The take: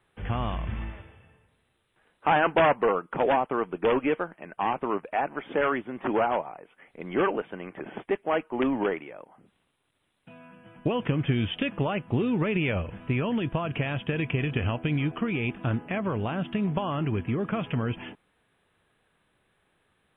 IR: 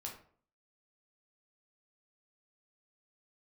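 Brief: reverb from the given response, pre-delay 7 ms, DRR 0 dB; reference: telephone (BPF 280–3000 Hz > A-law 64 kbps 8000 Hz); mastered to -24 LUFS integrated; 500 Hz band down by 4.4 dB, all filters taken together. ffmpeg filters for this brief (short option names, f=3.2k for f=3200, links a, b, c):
-filter_complex "[0:a]equalizer=f=500:t=o:g=-5,asplit=2[a][b];[1:a]atrim=start_sample=2205,adelay=7[c];[b][c]afir=irnorm=-1:irlink=0,volume=2.5dB[d];[a][d]amix=inputs=2:normalize=0,highpass=280,lowpass=3k,volume=4.5dB" -ar 8000 -c:a pcm_alaw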